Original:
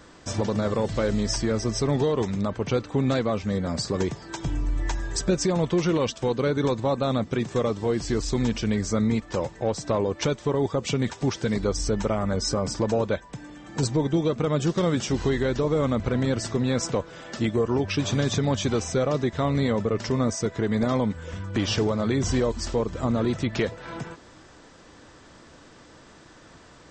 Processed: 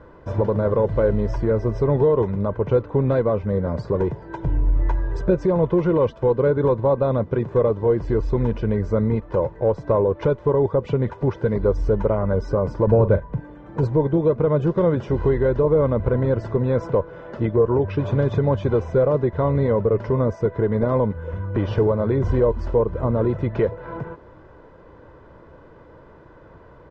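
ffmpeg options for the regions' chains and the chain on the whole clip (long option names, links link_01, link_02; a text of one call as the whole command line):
ffmpeg -i in.wav -filter_complex "[0:a]asettb=1/sr,asplit=3[link_01][link_02][link_03];[link_01]atrim=end=3.954[link_04];[link_02]atrim=start=3.95:end=4.75,asetpts=PTS-STARTPTS,afade=type=in:duration=0.004:curve=qsin,afade=type=out:start_time=0.796:duration=0.004:curve=qsin,bandreject=frequency=1200:width=7.1,asoftclip=type=hard:threshold=-19dB[link_05];[link_03]atrim=start=4.746[link_06];[link_04][link_05]acrossfade=duration=0.004:curve1=hsin:curve2=qsin[link_07];[link_07][link_06]acrossfade=duration=0.004:curve1=qsin:curve2=hsin,asettb=1/sr,asplit=3[link_08][link_09][link_10];[link_08]atrim=end=12.874[link_11];[link_09]atrim=start=12.87:end=13.4,asetpts=PTS-STARTPTS,afade=type=in:duration=0.004:curve=qsin,afade=type=out:start_time=0.526:duration=0.004:curve=qsin,bass=frequency=250:gain=9,treble=frequency=4000:gain=-5,asplit=2[link_12][link_13];[link_13]adelay=41,volume=-12.5dB[link_14];[link_12][link_14]amix=inputs=2:normalize=0,atrim=end_sample=23373[link_15];[link_10]atrim=start=13.396[link_16];[link_11][link_15]acrossfade=duration=0.004:curve1=hsin:curve2=qsin[link_17];[link_17][link_16]acrossfade=duration=0.004:curve1=qsin:curve2=hsin,lowpass=1100,aecho=1:1:2:0.48,volume=4.5dB" out.wav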